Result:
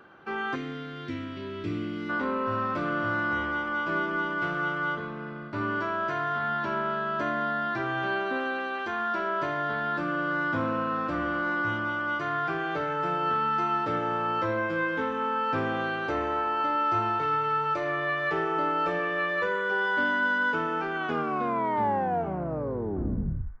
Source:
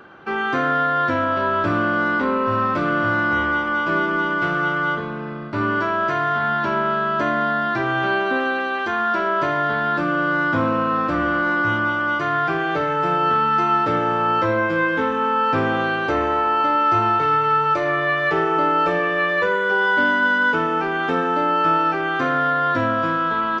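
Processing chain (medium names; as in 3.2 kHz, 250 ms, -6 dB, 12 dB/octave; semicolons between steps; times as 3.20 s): tape stop on the ending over 2.66 s; time-frequency box 0.55–2.10 s, 470–1800 Hz -17 dB; band-passed feedback delay 184 ms, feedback 78%, band-pass 1.6 kHz, level -20 dB; trim -8.5 dB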